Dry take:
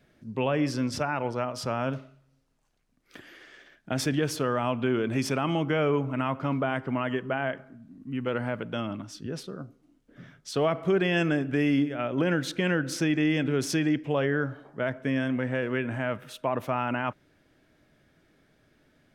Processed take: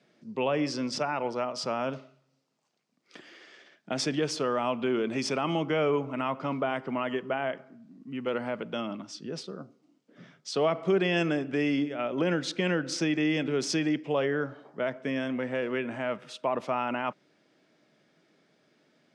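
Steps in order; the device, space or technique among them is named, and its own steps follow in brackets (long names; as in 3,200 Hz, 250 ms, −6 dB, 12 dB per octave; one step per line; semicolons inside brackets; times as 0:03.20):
television speaker (loudspeaker in its box 170–8,100 Hz, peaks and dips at 270 Hz −4 dB, 1,600 Hz −5 dB, 4,900 Hz +4 dB)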